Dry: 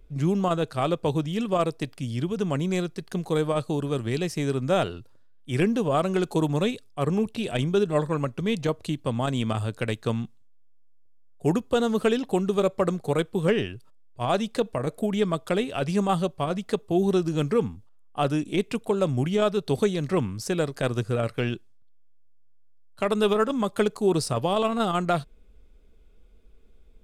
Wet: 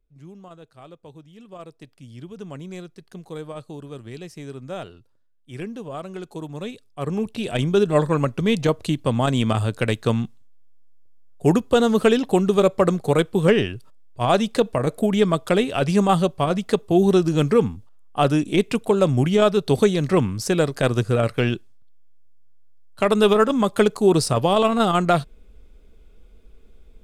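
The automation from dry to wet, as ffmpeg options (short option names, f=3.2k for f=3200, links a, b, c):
-af "volume=6dB,afade=t=in:st=1.34:d=1.07:silence=0.334965,afade=t=in:st=6.52:d=0.51:silence=0.421697,afade=t=in:st=7.03:d=1:silence=0.398107"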